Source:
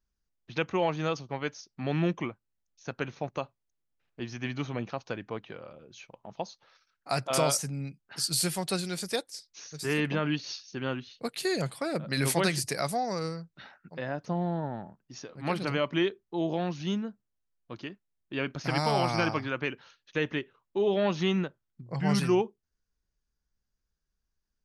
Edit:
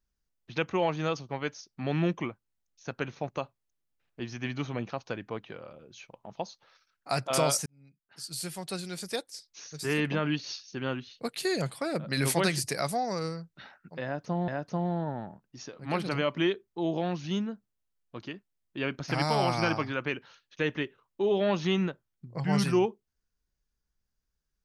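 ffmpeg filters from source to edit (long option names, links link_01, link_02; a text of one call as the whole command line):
ffmpeg -i in.wav -filter_complex "[0:a]asplit=3[link_01][link_02][link_03];[link_01]atrim=end=7.66,asetpts=PTS-STARTPTS,afade=type=out:start_time=7.656:duration=0.004:curve=hsin[link_04];[link_02]atrim=start=7.66:end=14.482,asetpts=PTS-STARTPTS,afade=type=in:duration=1.99[link_05];[link_03]atrim=start=14.038[link_06];[link_04][link_05]concat=n=2:v=0:a=1[link_07];[link_07][link_06]acrossfade=duration=0.004:curve1=hsin:curve2=hsin" out.wav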